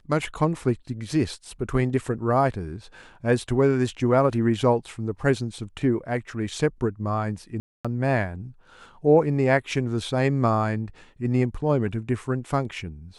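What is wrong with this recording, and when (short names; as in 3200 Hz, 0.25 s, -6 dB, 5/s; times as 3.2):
7.6–7.85 gap 0.246 s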